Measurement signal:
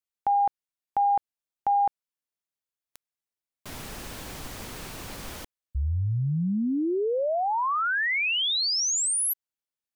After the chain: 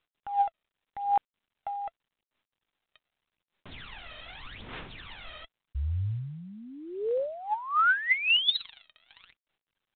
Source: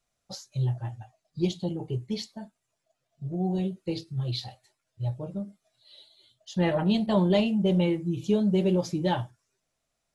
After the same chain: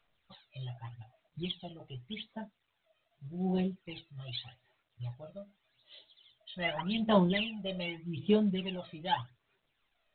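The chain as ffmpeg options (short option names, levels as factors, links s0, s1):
-af "aphaser=in_gain=1:out_gain=1:delay=1.6:decay=0.74:speed=0.84:type=sinusoidal,tiltshelf=f=1200:g=-7.5,volume=0.422" -ar 8000 -c:a pcm_mulaw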